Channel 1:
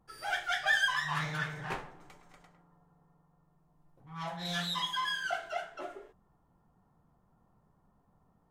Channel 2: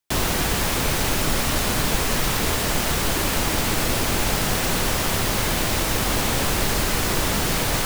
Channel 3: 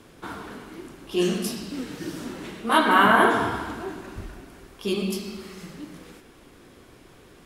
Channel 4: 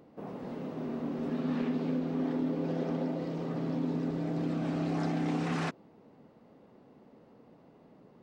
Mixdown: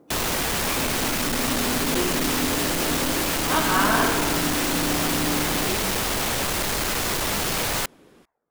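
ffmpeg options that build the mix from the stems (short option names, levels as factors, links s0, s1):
-filter_complex "[0:a]aeval=exprs='val(0)*sin(2*PI*740*n/s+740*0.75/0.99*sin(2*PI*0.99*n/s))':c=same,volume=0.473[s0];[1:a]asoftclip=type=tanh:threshold=0.0794,volume=1.41[s1];[2:a]adelay=800,volume=0.596[s2];[3:a]lowpass=1200,equalizer=f=310:w=3.7:g=6.5,volume=1.41[s3];[s0][s1][s2][s3]amix=inputs=4:normalize=0,lowshelf=f=220:g=-7"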